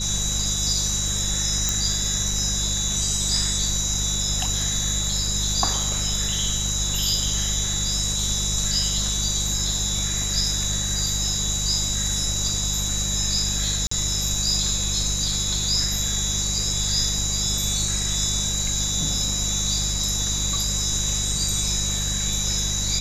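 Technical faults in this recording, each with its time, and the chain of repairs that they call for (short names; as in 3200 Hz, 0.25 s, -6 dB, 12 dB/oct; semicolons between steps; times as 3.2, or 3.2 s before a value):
hum 50 Hz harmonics 4 -29 dBFS
tone 3900 Hz -29 dBFS
1.69 pop
13.87–13.91 gap 44 ms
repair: de-click; de-hum 50 Hz, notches 4; notch 3900 Hz, Q 30; interpolate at 13.87, 44 ms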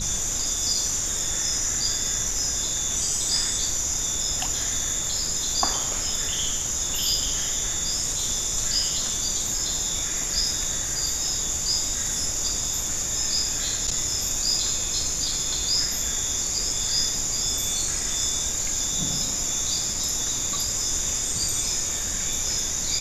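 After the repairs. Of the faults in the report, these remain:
none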